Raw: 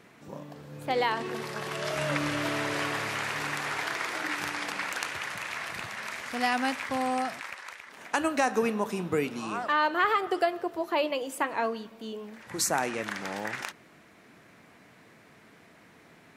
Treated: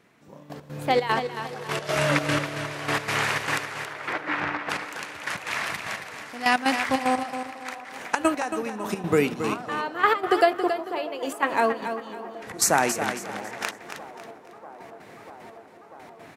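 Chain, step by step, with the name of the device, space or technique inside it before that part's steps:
0:03.83–0:04.69: low-pass filter 3,000 Hz → 1,800 Hz 12 dB per octave
trance gate with a delay (gate pattern ".....x.xxx.x" 151 BPM −12 dB; repeating echo 275 ms, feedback 34%, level −9 dB)
delay with a band-pass on its return 642 ms, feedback 84%, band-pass 590 Hz, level −20 dB
level +7 dB

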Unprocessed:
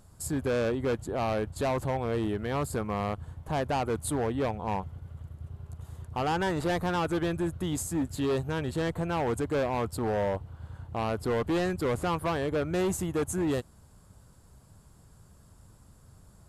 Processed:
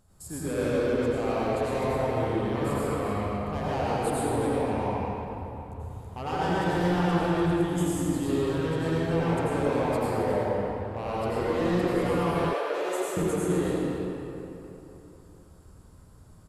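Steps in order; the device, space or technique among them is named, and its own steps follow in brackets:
cave (single-tap delay 263 ms −11.5 dB; convolution reverb RT60 3.3 s, pre-delay 79 ms, DRR −9 dB)
0:12.53–0:13.17: high-pass filter 420 Hz 24 dB per octave
level −7.5 dB

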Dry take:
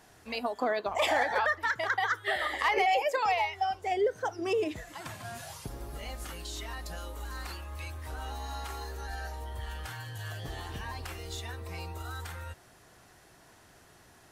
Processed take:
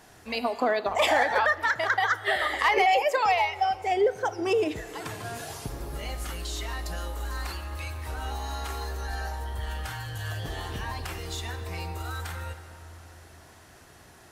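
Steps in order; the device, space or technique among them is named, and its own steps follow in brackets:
compressed reverb return (on a send at −8 dB: convolution reverb RT60 2.8 s, pre-delay 38 ms + downward compressor, threshold −36 dBFS, peak gain reduction 14 dB)
on the sum: level +4.5 dB

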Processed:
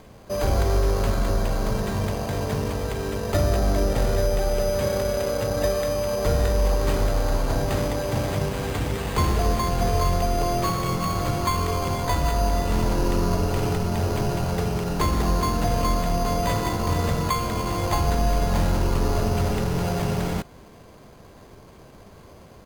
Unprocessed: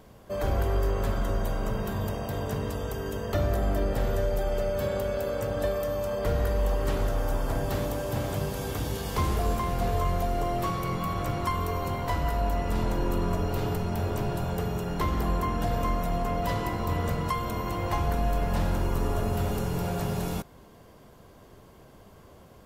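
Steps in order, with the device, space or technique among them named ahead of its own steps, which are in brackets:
crushed at another speed (tape speed factor 0.8×; decimation without filtering 10×; tape speed factor 1.25×)
level +5 dB

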